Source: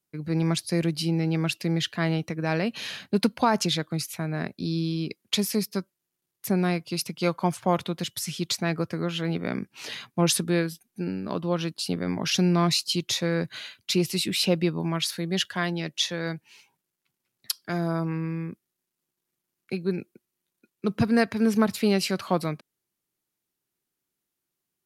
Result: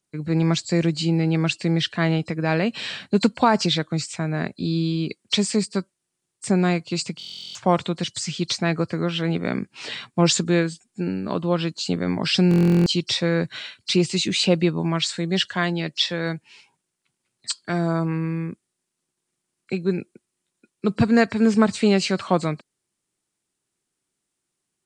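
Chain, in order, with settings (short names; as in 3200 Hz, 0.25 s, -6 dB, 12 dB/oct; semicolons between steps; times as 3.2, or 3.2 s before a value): nonlinear frequency compression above 4000 Hz 1.5:1; stuck buffer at 7.18/12.49, samples 1024, times 15; gain +4.5 dB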